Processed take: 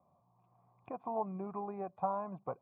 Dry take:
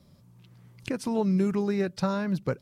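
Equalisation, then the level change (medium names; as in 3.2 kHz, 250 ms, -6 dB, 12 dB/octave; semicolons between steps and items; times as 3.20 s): cascade formant filter a; high-pass 74 Hz; +9.0 dB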